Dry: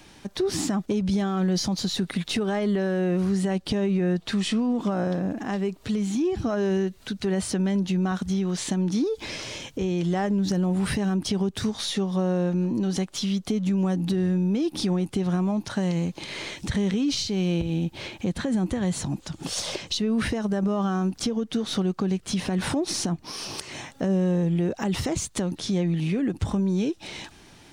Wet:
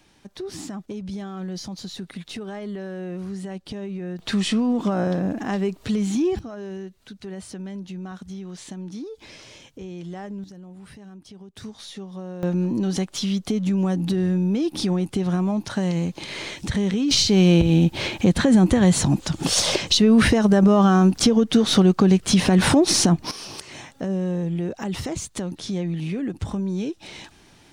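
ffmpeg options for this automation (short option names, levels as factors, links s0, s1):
-af "asetnsamples=n=441:p=0,asendcmd='4.19 volume volume 3dB;6.39 volume volume -10dB;10.44 volume volume -18.5dB;11.56 volume volume -10.5dB;12.43 volume volume 2dB;17.11 volume volume 9.5dB;23.31 volume volume -2dB',volume=0.398"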